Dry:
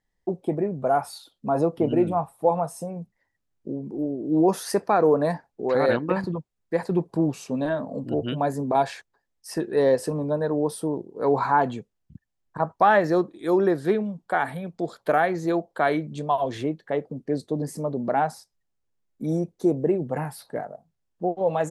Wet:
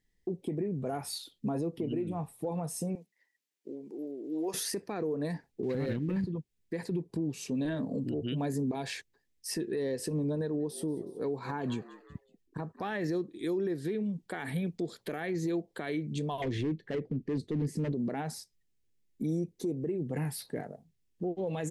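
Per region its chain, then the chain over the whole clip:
0:02.95–0:04.54: high-pass filter 580 Hz + downward compressor 1.5 to 1, threshold −40 dBFS
0:05.63–0:06.27: bass and treble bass +12 dB, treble −4 dB + leveller curve on the samples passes 1
0:10.35–0:12.91: notch filter 2,000 Hz, Q 14 + shaped tremolo triangle 4.5 Hz, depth 55% + echo with shifted repeats 185 ms, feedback 48%, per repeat +95 Hz, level −21 dB
0:16.42–0:17.92: low-shelf EQ 140 Hz +8 dB + hard clipping −24.5 dBFS + low-pass filter 2,600 Hz 6 dB per octave
whole clip: flat-topped bell 910 Hz −12 dB; downward compressor 6 to 1, threshold −30 dBFS; brickwall limiter −27.5 dBFS; level +2.5 dB

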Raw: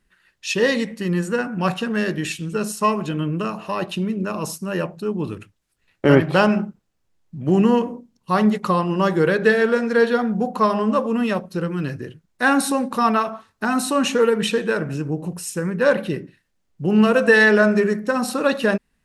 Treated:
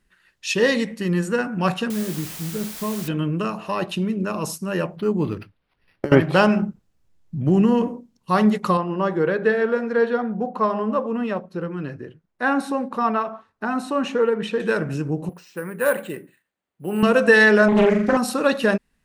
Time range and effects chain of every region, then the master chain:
0:01.90–0:03.08: resonant band-pass 110 Hz, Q 0.51 + bit-depth reduction 6 bits, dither triangular
0:04.96–0:06.12: compressor whose output falls as the input rises −19 dBFS, ratio −0.5 + linearly interpolated sample-rate reduction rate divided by 6×
0:06.62–0:07.88: low-shelf EQ 230 Hz +8 dB + downward compressor 2.5 to 1, threshold −14 dBFS
0:08.77–0:14.60: low-pass filter 1,200 Hz 6 dB per octave + low-shelf EQ 240 Hz −8 dB
0:15.29–0:17.03: high-pass filter 540 Hz 6 dB per octave + high-frequency loss of the air 190 metres + bad sample-rate conversion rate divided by 4×, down filtered, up hold
0:17.68–0:18.17: low-pass filter 2,700 Hz 6 dB per octave + flutter between parallel walls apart 7.2 metres, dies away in 0.67 s + highs frequency-modulated by the lows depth 0.61 ms
whole clip: no processing

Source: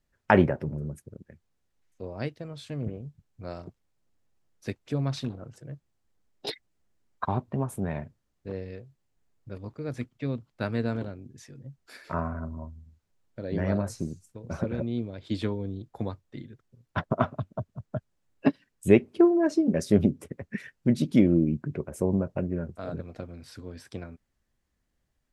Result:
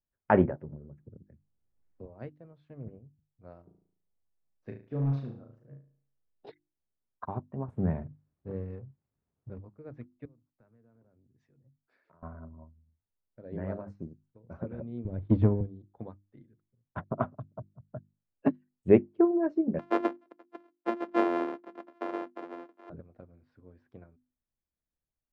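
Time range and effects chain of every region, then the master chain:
0:00.97–0:02.06: low-shelf EQ 350 Hz +10.5 dB + multiband upward and downward compressor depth 40%
0:03.64–0:06.46: flutter between parallel walls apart 6.2 metres, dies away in 0.55 s + hard clipping −18 dBFS
0:07.68–0:09.59: mu-law and A-law mismatch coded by mu + high-pass filter 78 Hz + low-shelf EQ 250 Hz +11.5 dB
0:10.25–0:12.23: downward compressor 12 to 1, threshold −43 dBFS + multiband upward and downward expander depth 70%
0:15.05–0:15.61: RIAA equalisation playback + leveller curve on the samples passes 1
0:19.79–0:22.90: samples sorted by size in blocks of 128 samples + Butterworth high-pass 270 Hz
whole clip: low-pass filter 1,400 Hz 12 dB per octave; mains-hum notches 50/100/150/200/250/300/350 Hz; expander for the loud parts 1.5 to 1, over −45 dBFS

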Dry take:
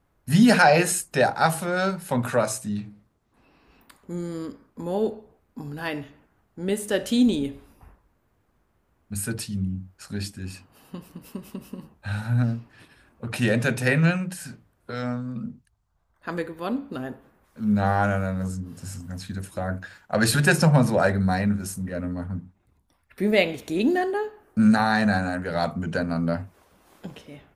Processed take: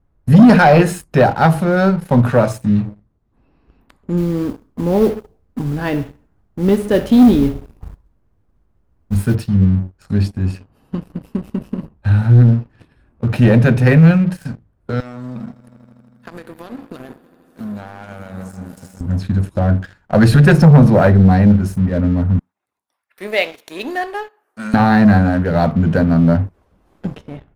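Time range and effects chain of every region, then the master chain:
0:04.17–0:09.35: noise that follows the level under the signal 13 dB + repeating echo 65 ms, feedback 41%, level −18.5 dB
0:15.00–0:19.01: RIAA equalisation recording + downward compressor 10 to 1, threshold −37 dBFS + echo that builds up and dies away 80 ms, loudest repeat 5, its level −18 dB
0:22.39–0:24.74: high-pass filter 840 Hz + high-shelf EQ 5,000 Hz +9 dB
whole clip: spectral tilt −3 dB per octave; leveller curve on the samples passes 2; dynamic equaliser 7,700 Hz, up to −6 dB, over −48 dBFS, Q 1.5

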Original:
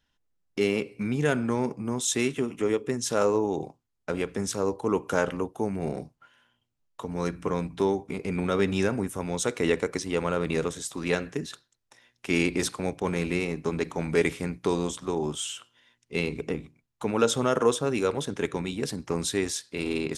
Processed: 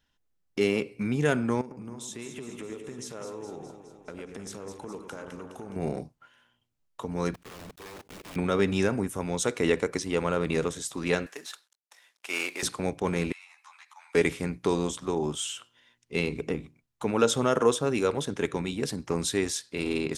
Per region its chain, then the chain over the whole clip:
0:01.61–0:05.76: downward compressor 5 to 1, threshold −38 dBFS + delay that swaps between a low-pass and a high-pass 104 ms, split 2,100 Hz, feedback 78%, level −6.5 dB
0:07.34–0:08.36: one scale factor per block 3 bits + output level in coarse steps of 21 dB + wrap-around overflow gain 38.5 dB
0:11.26–0:12.63: variable-slope delta modulation 64 kbit/s + high-pass filter 740 Hz + floating-point word with a short mantissa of 4 bits
0:13.32–0:14.15: Butterworth high-pass 840 Hz 48 dB per octave + downward compressor 2.5 to 1, threshold −49 dBFS + string-ensemble chorus
whole clip: no processing

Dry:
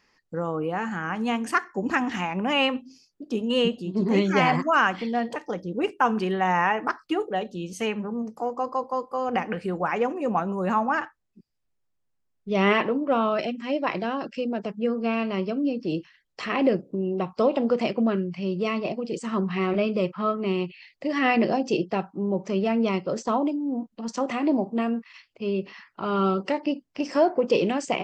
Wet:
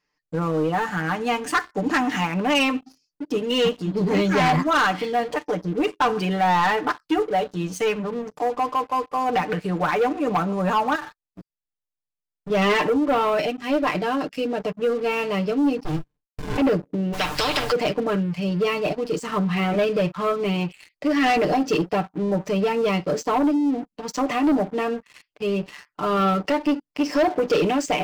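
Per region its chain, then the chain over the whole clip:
0:10.95–0:12.50: parametric band 230 Hz −6 dB 0.56 octaves + downward compressor 12 to 1, threshold −42 dBFS + leveller curve on the samples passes 3
0:15.84–0:16.58: mu-law and A-law mismatch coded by A + comb filter 2 ms, depth 61% + windowed peak hold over 65 samples
0:17.12–0:17.71: meter weighting curve A + background noise brown −44 dBFS + every bin compressed towards the loudest bin 4 to 1
whole clip: comb filter 6.7 ms, depth 80%; leveller curve on the samples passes 3; level −7.5 dB

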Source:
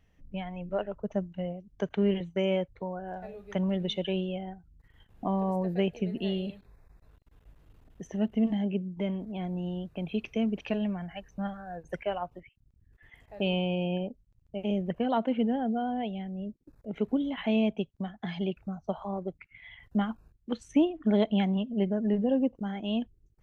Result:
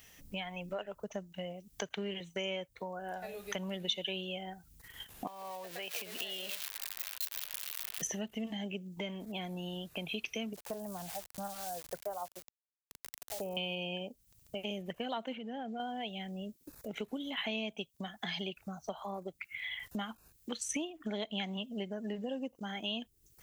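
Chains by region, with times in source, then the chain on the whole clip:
0:05.27–0:08.02: spike at every zero crossing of −33 dBFS + downward compressor 12 to 1, threshold −34 dBFS + three-way crossover with the lows and the highs turned down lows −18 dB, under 500 Hz, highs −20 dB, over 3,600 Hz
0:10.53–0:13.57: low-pass filter 1,100 Hz 24 dB per octave + centre clipping without the shift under −52.5 dBFS + parametric band 240 Hz −8.5 dB 1.2 octaves
0:15.35–0:15.80: low-pass filter 3,800 Hz 6 dB per octave + downward compressor, threshold −32 dBFS
whole clip: spectral tilt +3 dB per octave; downward compressor 3 to 1, threshold −51 dBFS; high-shelf EQ 3,800 Hz +11 dB; level +9 dB

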